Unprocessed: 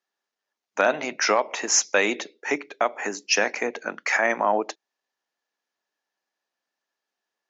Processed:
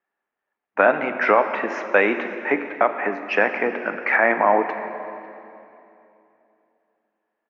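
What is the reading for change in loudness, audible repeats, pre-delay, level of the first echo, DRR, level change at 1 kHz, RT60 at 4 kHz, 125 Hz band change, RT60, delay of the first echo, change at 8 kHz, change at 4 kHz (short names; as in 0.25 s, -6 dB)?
+3.0 dB, 1, 17 ms, -23.5 dB, 8.0 dB, +5.0 dB, 2.4 s, n/a, 2.9 s, 0.549 s, n/a, -12.0 dB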